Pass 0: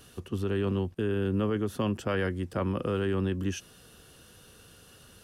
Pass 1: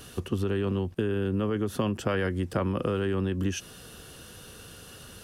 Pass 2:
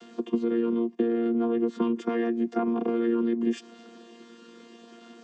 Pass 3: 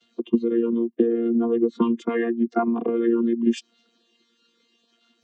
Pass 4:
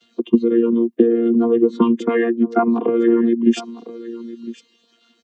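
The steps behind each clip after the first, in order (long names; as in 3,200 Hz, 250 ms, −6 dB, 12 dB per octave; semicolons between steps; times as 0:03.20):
downward compressor, threshold −31 dBFS, peak gain reduction 8 dB; level +7.5 dB
channel vocoder with a chord as carrier bare fifth, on A#3; level +3.5 dB
spectral dynamics exaggerated over time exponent 2; level +8.5 dB
single-tap delay 1,006 ms −16.5 dB; level +6 dB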